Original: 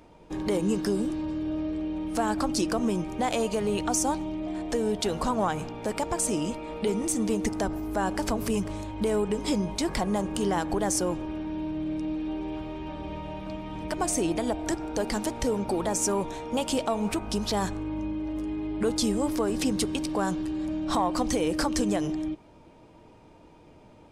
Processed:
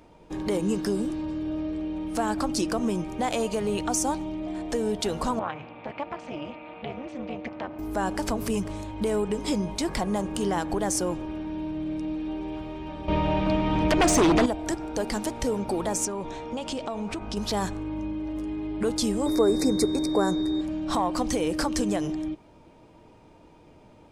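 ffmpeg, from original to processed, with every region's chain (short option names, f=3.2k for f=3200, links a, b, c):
-filter_complex "[0:a]asettb=1/sr,asplit=3[a][b][c];[a]atrim=end=5.394[d];[b]atrim=start=5.39:end=7.79,asetpts=PTS-STARTPTS,afade=t=in:d=0.004:c=qsin,afade=t=out:st=2.396:d=0.004:c=qsin,tremolo=f=280:d=0.947,highpass=130,equalizer=f=190:t=q:w=4:g=-8,equalizer=f=410:t=q:w=4:g=-9,equalizer=f=2.4k:t=q:w=4:g=6,lowpass=f=3.4k:w=0.5412,lowpass=f=3.4k:w=1.3066[e];[c]atrim=start=7.786[f];[d][e]acrossfade=d=0.004:c1=hsin:c2=qsin[g];[g][f]acrossfade=d=0.004:c1=qsin:c2=hsin,asettb=1/sr,asplit=3[h][i][j];[h]atrim=end=13.084[k];[i]atrim=start=13.08:end=14.46,asetpts=PTS-STARTPTS,afade=t=in:d=0.004:c=qsin,afade=t=out:st=1.376:d=0.004:c=qsin,lowpass=5.2k,aeval=exprs='0.168*sin(PI/2*2.82*val(0)/0.168)':c=same[l];[j]atrim=start=14.456[m];[k][l]acrossfade=d=0.004:c1=hsin:c2=qsin[n];[n][m]acrossfade=d=0.004:c1=qsin:c2=hsin,asettb=1/sr,asplit=3[o][p][q];[o]atrim=end=16.054[r];[p]atrim=start=16.05:end=17.37,asetpts=PTS-STARTPTS,afade=t=in:d=0.004:c=qsin,afade=t=out:st=1.316:d=0.004:c=qsin,lowpass=6.2k,acompressor=threshold=-28dB:ratio=4:attack=3.2:release=140:knee=1:detection=peak[s];[q]atrim=start=17.366[t];[r][s]acrossfade=d=0.004:c1=hsin:c2=qsin[u];[u][t]acrossfade=d=0.004:c1=qsin:c2=hsin,asettb=1/sr,asplit=3[v][w][x];[v]atrim=end=19.264[y];[w]atrim=start=19.26:end=20.61,asetpts=PTS-STARTPTS,afade=t=in:d=0.004:c=qsin,afade=t=out:st=1.346:d=0.004:c=qsin,equalizer=f=410:t=o:w=0.88:g=8.5,aeval=exprs='val(0)+0.0631*sin(2*PI*3700*n/s)':c=same,asuperstop=centerf=3100:order=8:qfactor=1.8[z];[x]atrim=start=20.606[aa];[y][z]acrossfade=d=0.004:c1=hsin:c2=qsin[ab];[ab][aa]acrossfade=d=0.004:c1=qsin:c2=hsin"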